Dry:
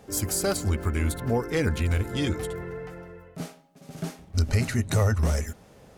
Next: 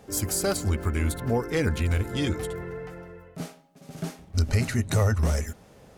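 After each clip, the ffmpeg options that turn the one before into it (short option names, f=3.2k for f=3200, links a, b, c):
-af anull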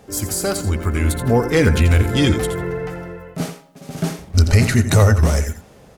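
-filter_complex "[0:a]dynaudnorm=f=330:g=7:m=7.5dB,aecho=1:1:85:0.266,asplit=2[a][b];[b]asoftclip=type=tanh:threshold=-13dB,volume=-11dB[c];[a][c]amix=inputs=2:normalize=0,volume=2dB"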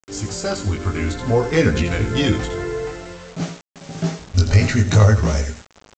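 -af "flanger=delay=17.5:depth=2.6:speed=0.54,aresample=16000,acrusher=bits=6:mix=0:aa=0.000001,aresample=44100,volume=1.5dB"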